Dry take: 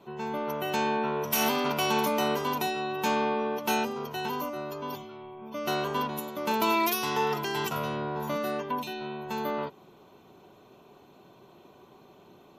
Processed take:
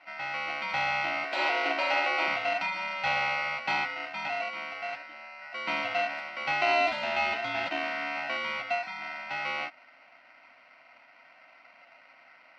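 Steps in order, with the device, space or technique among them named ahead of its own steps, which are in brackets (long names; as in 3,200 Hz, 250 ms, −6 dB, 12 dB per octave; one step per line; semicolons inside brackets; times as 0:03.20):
ring modulator pedal into a guitar cabinet (ring modulator with a square carrier 1,700 Hz; loudspeaker in its box 100–3,500 Hz, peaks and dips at 120 Hz −7 dB, 190 Hz −9 dB, 280 Hz +7 dB, 420 Hz −10 dB, 660 Hz +8 dB, 1,200 Hz −6 dB)
0:01.24–0:02.28: low shelf with overshoot 250 Hz −11 dB, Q 3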